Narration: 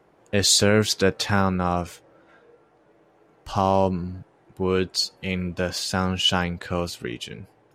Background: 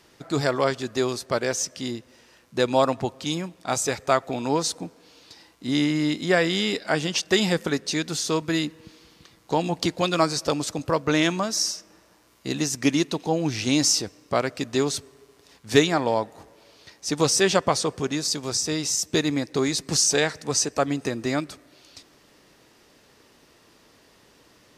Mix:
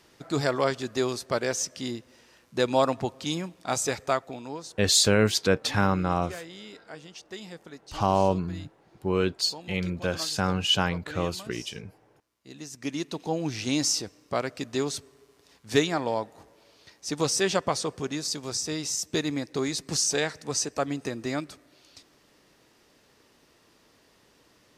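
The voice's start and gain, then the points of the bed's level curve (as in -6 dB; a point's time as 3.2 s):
4.45 s, -2.5 dB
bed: 4.01 s -2.5 dB
4.83 s -20 dB
12.4 s -20 dB
13.24 s -5 dB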